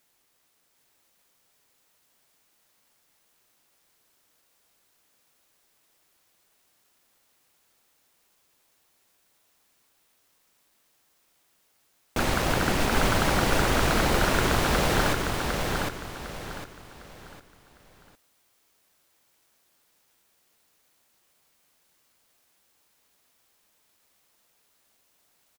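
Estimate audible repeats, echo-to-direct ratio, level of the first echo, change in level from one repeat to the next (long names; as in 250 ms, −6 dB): 4, −3.0 dB, −3.5 dB, −9.5 dB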